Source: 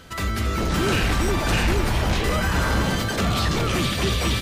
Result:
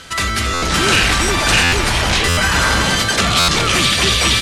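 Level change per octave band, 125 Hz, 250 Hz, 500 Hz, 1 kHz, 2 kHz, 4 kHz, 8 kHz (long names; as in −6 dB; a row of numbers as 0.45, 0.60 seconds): +2.5, +2.5, +4.5, +8.5, +11.5, +13.0, +13.5 decibels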